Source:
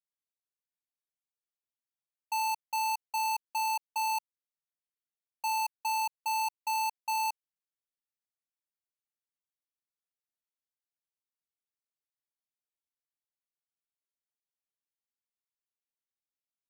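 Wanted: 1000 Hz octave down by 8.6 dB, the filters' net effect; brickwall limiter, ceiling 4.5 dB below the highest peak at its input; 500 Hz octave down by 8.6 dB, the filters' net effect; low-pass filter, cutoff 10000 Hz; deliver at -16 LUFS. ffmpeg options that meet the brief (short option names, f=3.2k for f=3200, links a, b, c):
-af "lowpass=10k,equalizer=f=500:t=o:g=-9,equalizer=f=1k:t=o:g=-7,volume=25dB,alimiter=limit=-7.5dB:level=0:latency=1"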